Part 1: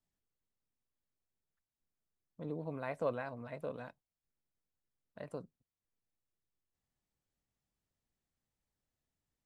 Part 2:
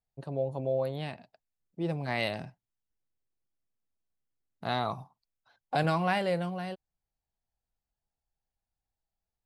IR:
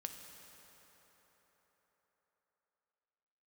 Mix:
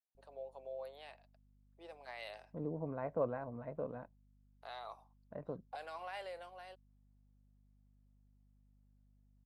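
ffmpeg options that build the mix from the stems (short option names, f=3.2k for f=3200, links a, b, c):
-filter_complex "[0:a]aeval=exprs='val(0)+0.000398*(sin(2*PI*50*n/s)+sin(2*PI*2*50*n/s)/2+sin(2*PI*3*50*n/s)/3+sin(2*PI*4*50*n/s)/4+sin(2*PI*5*50*n/s)/5)':c=same,lowpass=1.1k,adelay=150,volume=0.5dB[a];[1:a]alimiter=limit=-22.5dB:level=0:latency=1:release=20,highpass=f=490:w=0.5412,highpass=f=490:w=1.3066,volume=-12.5dB[b];[a][b]amix=inputs=2:normalize=0"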